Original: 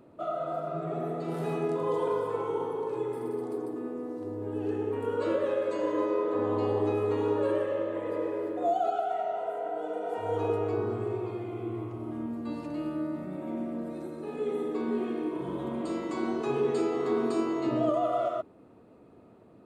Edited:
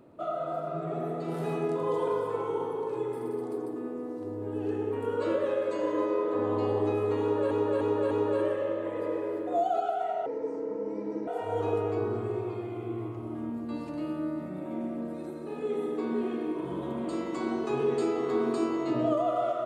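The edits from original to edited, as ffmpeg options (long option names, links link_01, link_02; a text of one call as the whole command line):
ffmpeg -i in.wav -filter_complex "[0:a]asplit=6[link_01][link_02][link_03][link_04][link_05][link_06];[link_01]atrim=end=7.512[link_07];[link_02]atrim=start=7.208:end=7.512[link_08];[link_03]atrim=start=7.208:end=7.512[link_09];[link_04]atrim=start=7.208:end=9.364[link_10];[link_05]atrim=start=9.36:end=10.04,asetpts=PTS-STARTPTS,asetrate=29547,aresample=44100,atrim=end_sample=44758,asetpts=PTS-STARTPTS[link_11];[link_06]atrim=start=10.036[link_12];[link_07][link_08]acrossfade=duration=0.004:curve1=hsin:curve2=hsin[link_13];[link_13][link_09]acrossfade=duration=0.004:curve1=hsin:curve2=hsin[link_14];[link_14][link_10]acrossfade=duration=0.004:curve1=hsin:curve2=hsin[link_15];[link_15][link_11]acrossfade=duration=0.004:curve1=hsin:curve2=hsin[link_16];[link_16][link_12]acrossfade=duration=0.004:curve1=hsin:curve2=hsin" out.wav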